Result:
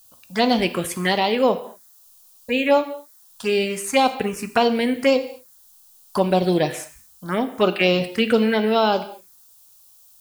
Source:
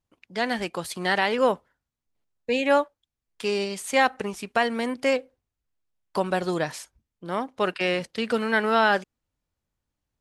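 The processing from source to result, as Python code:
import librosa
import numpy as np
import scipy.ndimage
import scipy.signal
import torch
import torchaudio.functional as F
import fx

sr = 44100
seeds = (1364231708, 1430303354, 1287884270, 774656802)

y = fx.rider(x, sr, range_db=3, speed_s=0.5)
y = fx.dmg_noise_colour(y, sr, seeds[0], colour='blue', level_db=-60.0)
y = fx.env_phaser(y, sr, low_hz=340.0, high_hz=1800.0, full_db=-19.5)
y = fx.rev_gated(y, sr, seeds[1], gate_ms=260, shape='falling', drr_db=9.5)
y = y * librosa.db_to_amplitude(8.0)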